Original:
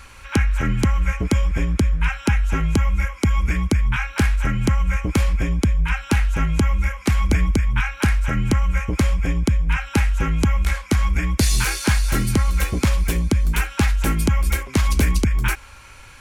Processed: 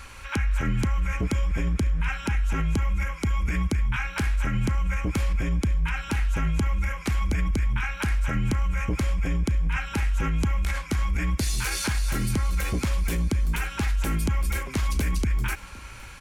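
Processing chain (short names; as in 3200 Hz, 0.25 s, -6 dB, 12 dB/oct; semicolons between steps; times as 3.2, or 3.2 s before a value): limiter -18 dBFS, peak gain reduction 10.5 dB; feedback echo 0.515 s, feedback 58%, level -22 dB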